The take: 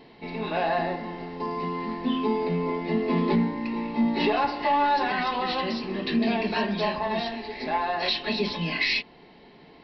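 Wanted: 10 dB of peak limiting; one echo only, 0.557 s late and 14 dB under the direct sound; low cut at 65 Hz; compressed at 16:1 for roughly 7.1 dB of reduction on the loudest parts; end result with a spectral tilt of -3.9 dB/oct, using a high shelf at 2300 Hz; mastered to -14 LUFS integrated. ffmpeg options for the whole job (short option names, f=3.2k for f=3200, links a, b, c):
-af "highpass=65,highshelf=f=2.3k:g=-5,acompressor=threshold=-26dB:ratio=16,alimiter=level_in=4.5dB:limit=-24dB:level=0:latency=1,volume=-4.5dB,aecho=1:1:557:0.2,volume=22dB"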